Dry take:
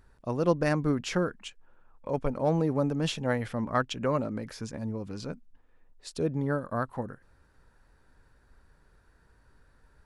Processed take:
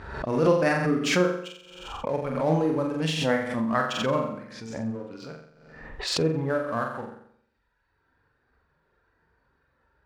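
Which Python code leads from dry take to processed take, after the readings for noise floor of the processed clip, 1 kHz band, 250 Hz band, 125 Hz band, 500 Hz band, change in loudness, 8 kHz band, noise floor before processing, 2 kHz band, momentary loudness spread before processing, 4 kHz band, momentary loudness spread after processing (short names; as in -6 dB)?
-72 dBFS, +4.5 dB, +3.0 dB, +1.0 dB, +4.5 dB, +4.5 dB, +6.5 dB, -63 dBFS, +7.0 dB, 15 LU, +8.0 dB, 17 LU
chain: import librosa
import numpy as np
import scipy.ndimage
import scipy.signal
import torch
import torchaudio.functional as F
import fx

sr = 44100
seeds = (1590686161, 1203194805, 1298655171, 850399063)

p1 = fx.dereverb_blind(x, sr, rt60_s=1.4)
p2 = scipy.signal.sosfilt(scipy.signal.butter(2, 48.0, 'highpass', fs=sr, output='sos'), p1)
p3 = fx.env_lowpass(p2, sr, base_hz=3000.0, full_db=-27.5)
p4 = fx.dynamic_eq(p3, sr, hz=2100.0, q=1.0, threshold_db=-46.0, ratio=4.0, max_db=4)
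p5 = np.sign(p4) * np.maximum(np.abs(p4) - 10.0 ** (-40.5 / 20.0), 0.0)
p6 = p4 + (p5 * librosa.db_to_amplitude(-3.5))
p7 = fx.low_shelf(p6, sr, hz=180.0, db=-8.5)
p8 = fx.hpss(p7, sr, part='harmonic', gain_db=7)
p9 = fx.doubler(p8, sr, ms=31.0, db=-11.0)
p10 = fx.room_flutter(p9, sr, wall_m=7.6, rt60_s=0.65)
p11 = fx.pre_swell(p10, sr, db_per_s=53.0)
y = p11 * librosa.db_to_amplitude(-5.0)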